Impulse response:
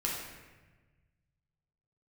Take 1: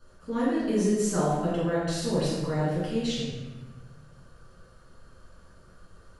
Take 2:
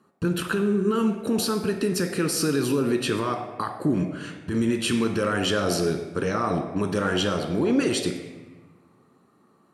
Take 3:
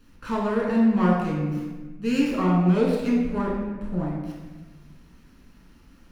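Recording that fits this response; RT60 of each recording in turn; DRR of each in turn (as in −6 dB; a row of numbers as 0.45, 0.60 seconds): 3; 1.3, 1.3, 1.3 seconds; −10.0, 4.5, −4.0 decibels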